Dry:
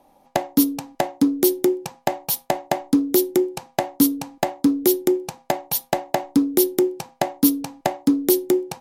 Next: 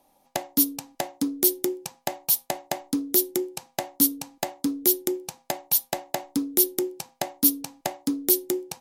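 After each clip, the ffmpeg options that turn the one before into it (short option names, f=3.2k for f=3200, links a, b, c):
-af "highshelf=f=3k:g=11.5,volume=-9dB"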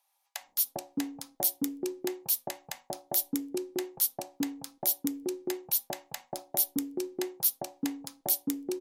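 -filter_complex "[0:a]acrossover=split=970[a][b];[a]adelay=400[c];[c][b]amix=inputs=2:normalize=0,volume=-6.5dB"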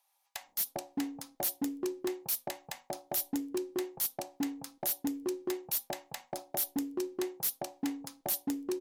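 -af "volume=28dB,asoftclip=hard,volume=-28dB"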